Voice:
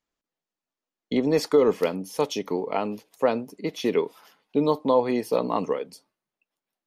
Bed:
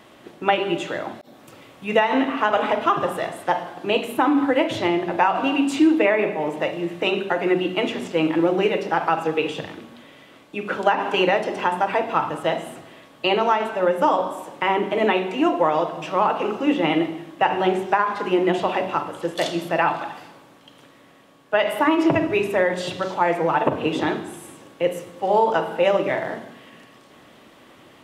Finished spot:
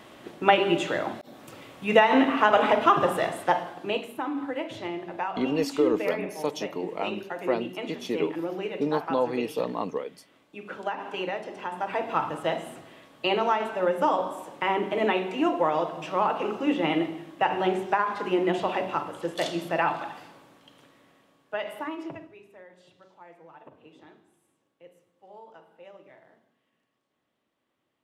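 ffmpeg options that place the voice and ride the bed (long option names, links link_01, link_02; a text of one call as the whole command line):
ffmpeg -i stem1.wav -i stem2.wav -filter_complex "[0:a]adelay=4250,volume=-5dB[link_01];[1:a]volume=7.5dB,afade=type=out:start_time=3.33:duration=0.8:silence=0.237137,afade=type=in:start_time=11.68:duration=0.47:silence=0.421697,afade=type=out:start_time=20.45:duration=1.9:silence=0.0562341[link_02];[link_01][link_02]amix=inputs=2:normalize=0" out.wav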